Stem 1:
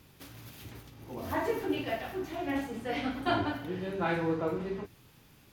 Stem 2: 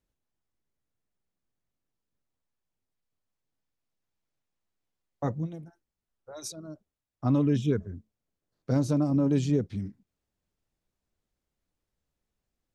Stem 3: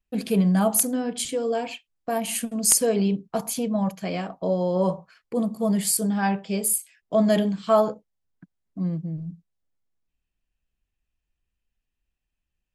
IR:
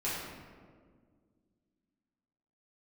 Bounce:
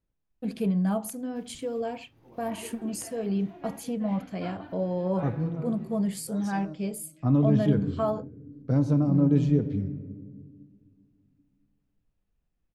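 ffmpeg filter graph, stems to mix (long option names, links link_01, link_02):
-filter_complex "[0:a]adelay=1150,volume=-14dB,asplit=2[link_01][link_02];[link_02]volume=-14.5dB[link_03];[1:a]bass=frequency=250:gain=5,treble=frequency=4000:gain=-4,volume=-2.5dB,asplit=2[link_04][link_05];[link_05]volume=-14.5dB[link_06];[2:a]lowshelf=frequency=140:gain=9,alimiter=limit=-12dB:level=0:latency=1:release=420,adelay=300,volume=-6.5dB[link_07];[3:a]atrim=start_sample=2205[link_08];[link_03][link_06]amix=inputs=2:normalize=0[link_09];[link_09][link_08]afir=irnorm=-1:irlink=0[link_10];[link_01][link_04][link_07][link_10]amix=inputs=4:normalize=0,highshelf=frequency=3800:gain=-8.5"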